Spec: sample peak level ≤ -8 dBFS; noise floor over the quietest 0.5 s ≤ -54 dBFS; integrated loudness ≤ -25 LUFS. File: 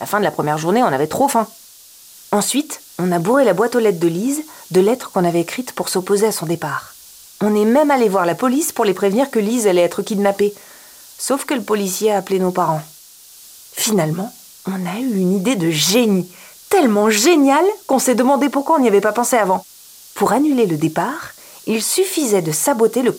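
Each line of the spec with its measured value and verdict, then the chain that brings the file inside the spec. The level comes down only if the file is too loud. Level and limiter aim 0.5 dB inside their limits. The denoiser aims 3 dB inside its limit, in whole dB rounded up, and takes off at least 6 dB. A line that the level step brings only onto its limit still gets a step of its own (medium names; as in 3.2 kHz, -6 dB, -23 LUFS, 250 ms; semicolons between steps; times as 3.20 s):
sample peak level -3.5 dBFS: fail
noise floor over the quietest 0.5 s -43 dBFS: fail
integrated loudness -16.5 LUFS: fail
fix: noise reduction 6 dB, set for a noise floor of -43 dBFS; trim -9 dB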